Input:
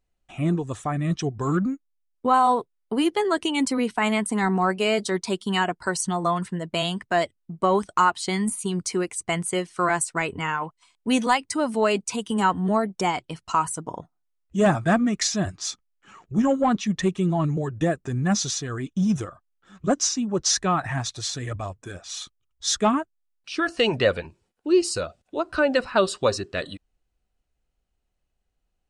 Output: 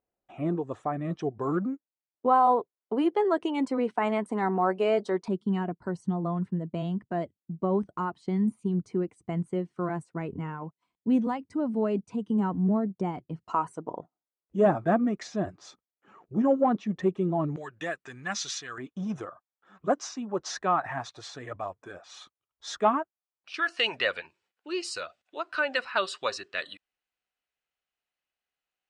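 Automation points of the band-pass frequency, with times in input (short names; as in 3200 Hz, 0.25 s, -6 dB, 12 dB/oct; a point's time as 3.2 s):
band-pass, Q 0.86
550 Hz
from 5.28 s 190 Hz
from 13.44 s 470 Hz
from 17.56 s 2100 Hz
from 18.78 s 830 Hz
from 23.54 s 2200 Hz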